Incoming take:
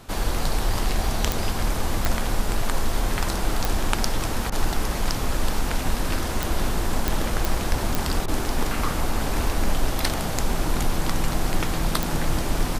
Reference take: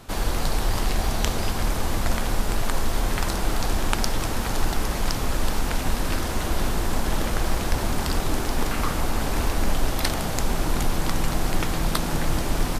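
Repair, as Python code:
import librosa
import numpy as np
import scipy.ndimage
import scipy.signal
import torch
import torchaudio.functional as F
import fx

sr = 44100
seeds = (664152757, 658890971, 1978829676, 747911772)

y = fx.fix_declip(x, sr, threshold_db=-4.5)
y = fx.fix_declick_ar(y, sr, threshold=10.0)
y = fx.fix_interpolate(y, sr, at_s=(4.5, 8.26), length_ms=19.0)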